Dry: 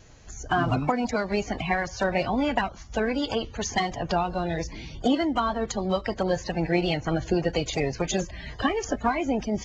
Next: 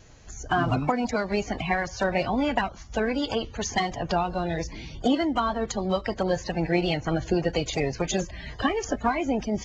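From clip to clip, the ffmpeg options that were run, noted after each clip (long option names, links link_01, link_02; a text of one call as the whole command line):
ffmpeg -i in.wav -af anull out.wav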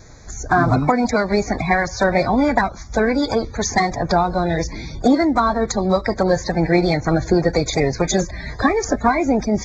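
ffmpeg -i in.wav -af "acontrast=87,asuperstop=centerf=2900:order=8:qfactor=2.7,volume=1.5dB" out.wav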